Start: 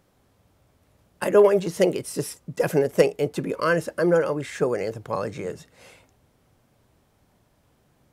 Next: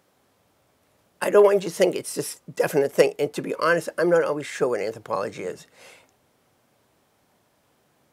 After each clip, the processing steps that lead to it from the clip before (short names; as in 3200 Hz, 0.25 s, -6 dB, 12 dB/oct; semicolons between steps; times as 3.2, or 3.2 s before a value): HPF 350 Hz 6 dB/oct; gain +2.5 dB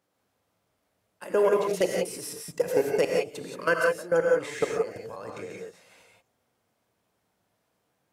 level quantiser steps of 19 dB; non-linear reverb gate 0.2 s rising, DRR -0.5 dB; gain -2 dB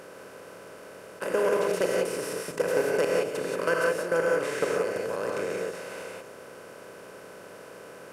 per-bin compression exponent 0.4; gain -6 dB